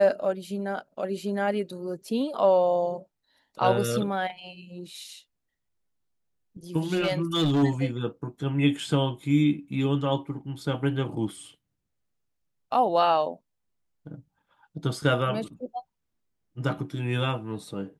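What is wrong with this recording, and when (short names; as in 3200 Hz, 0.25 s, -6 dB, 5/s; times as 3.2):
6.94–7.64 clipped -19.5 dBFS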